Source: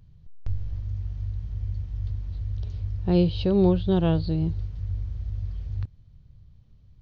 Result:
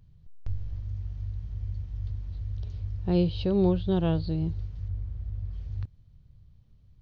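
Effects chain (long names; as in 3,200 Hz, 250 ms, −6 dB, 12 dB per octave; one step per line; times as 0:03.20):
0:04.88–0:05.53: high-shelf EQ 3,100 Hz −10 dB
level −3.5 dB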